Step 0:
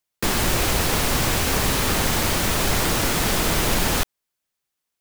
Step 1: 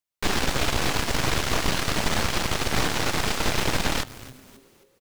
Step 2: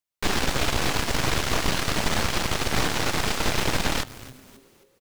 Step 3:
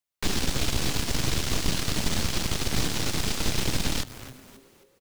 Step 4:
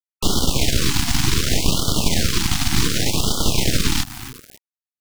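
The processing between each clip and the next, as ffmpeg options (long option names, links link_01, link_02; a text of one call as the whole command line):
ffmpeg -i in.wav -filter_complex "[0:a]asplit=5[link_01][link_02][link_03][link_04][link_05];[link_02]adelay=267,afreqshift=-140,volume=-15dB[link_06];[link_03]adelay=534,afreqshift=-280,volume=-21.9dB[link_07];[link_04]adelay=801,afreqshift=-420,volume=-28.9dB[link_08];[link_05]adelay=1068,afreqshift=-560,volume=-35.8dB[link_09];[link_01][link_06][link_07][link_08][link_09]amix=inputs=5:normalize=0,acrossover=split=6500[link_10][link_11];[link_11]acompressor=threshold=-40dB:ratio=4:attack=1:release=60[link_12];[link_10][link_12]amix=inputs=2:normalize=0,aeval=exprs='0.398*(cos(1*acos(clip(val(0)/0.398,-1,1)))-cos(1*PI/2))+0.178*(cos(6*acos(clip(val(0)/0.398,-1,1)))-cos(6*PI/2))':channel_layout=same,volume=-8dB" out.wav
ffmpeg -i in.wav -af anull out.wav
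ffmpeg -i in.wav -filter_complex "[0:a]acrossover=split=360|3000[link_01][link_02][link_03];[link_02]acompressor=threshold=-36dB:ratio=6[link_04];[link_01][link_04][link_03]amix=inputs=3:normalize=0" out.wav
ffmpeg -i in.wav -af "acrusher=bits=6:mix=0:aa=0.000001,afftfilt=real='re*(1-between(b*sr/1024,460*pow(2100/460,0.5+0.5*sin(2*PI*0.67*pts/sr))/1.41,460*pow(2100/460,0.5+0.5*sin(2*PI*0.67*pts/sr))*1.41))':imag='im*(1-between(b*sr/1024,460*pow(2100/460,0.5+0.5*sin(2*PI*0.67*pts/sr))/1.41,460*pow(2100/460,0.5+0.5*sin(2*PI*0.67*pts/sr))*1.41))':win_size=1024:overlap=0.75,volume=8dB" out.wav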